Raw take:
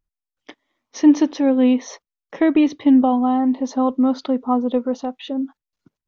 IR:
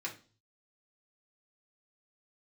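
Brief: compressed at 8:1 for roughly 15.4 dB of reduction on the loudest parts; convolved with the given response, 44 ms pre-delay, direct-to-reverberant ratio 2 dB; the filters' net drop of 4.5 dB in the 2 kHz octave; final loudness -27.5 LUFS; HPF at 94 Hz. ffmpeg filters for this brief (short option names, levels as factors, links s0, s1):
-filter_complex "[0:a]highpass=94,equalizer=f=2000:t=o:g=-5.5,acompressor=threshold=0.0562:ratio=8,asplit=2[s0][s1];[1:a]atrim=start_sample=2205,adelay=44[s2];[s1][s2]afir=irnorm=-1:irlink=0,volume=0.668[s3];[s0][s3]amix=inputs=2:normalize=0,volume=1.12"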